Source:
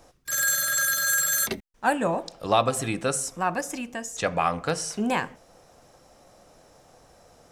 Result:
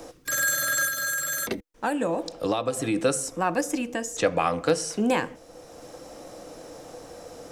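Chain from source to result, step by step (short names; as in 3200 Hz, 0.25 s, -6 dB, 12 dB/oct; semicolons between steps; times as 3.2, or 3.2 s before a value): 0.87–2.96 compressor 3:1, threshold -28 dBFS, peak gain reduction 10 dB; small resonant body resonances 310/480 Hz, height 11 dB, ringing for 55 ms; three-band squash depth 40%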